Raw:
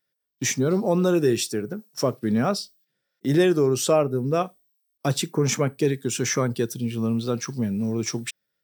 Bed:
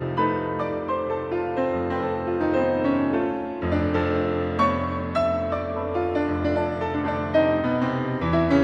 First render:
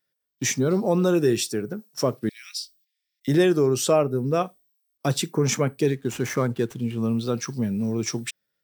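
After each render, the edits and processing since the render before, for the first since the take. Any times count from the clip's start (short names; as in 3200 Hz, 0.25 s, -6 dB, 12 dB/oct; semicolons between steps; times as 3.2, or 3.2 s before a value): 2.29–3.28 elliptic high-pass 2100 Hz, stop band 70 dB; 5.9–7.03 median filter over 9 samples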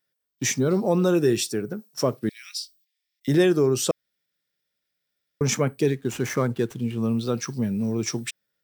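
3.91–5.41 room tone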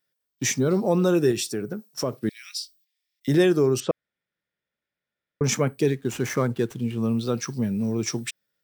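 1.31–2.21 compressor 2:1, threshold -24 dBFS; 3.8–5.44 LPF 2300 Hz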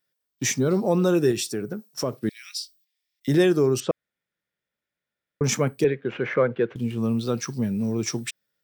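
5.84–6.76 speaker cabinet 160–3100 Hz, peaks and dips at 260 Hz -5 dB, 520 Hz +9 dB, 860 Hz -3 dB, 1500 Hz +5 dB, 2200 Hz +4 dB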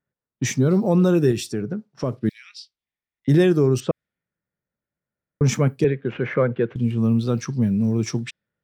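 low-pass opened by the level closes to 1400 Hz, open at -21.5 dBFS; tone controls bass +8 dB, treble -4 dB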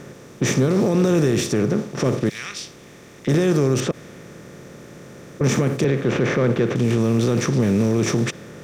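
per-bin compression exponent 0.4; limiter -10 dBFS, peak gain reduction 9 dB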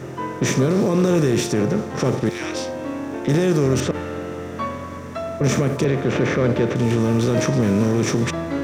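add bed -6 dB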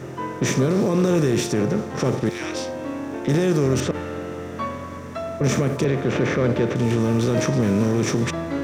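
gain -1.5 dB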